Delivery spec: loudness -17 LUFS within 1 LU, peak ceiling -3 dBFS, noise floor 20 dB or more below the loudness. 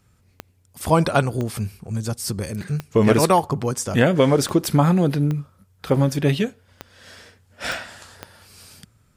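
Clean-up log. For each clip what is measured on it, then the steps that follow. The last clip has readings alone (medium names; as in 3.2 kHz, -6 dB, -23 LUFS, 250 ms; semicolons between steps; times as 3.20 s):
clicks found 8; loudness -21.0 LUFS; peak level -3.5 dBFS; loudness target -17.0 LUFS
-> de-click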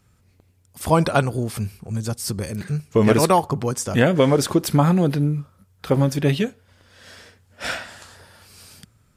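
clicks found 0; loudness -21.0 LUFS; peak level -3.5 dBFS; loudness target -17.0 LUFS
-> trim +4 dB; peak limiter -3 dBFS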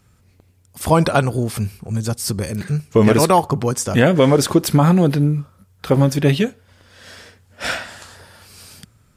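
loudness -17.5 LUFS; peak level -3.0 dBFS; noise floor -56 dBFS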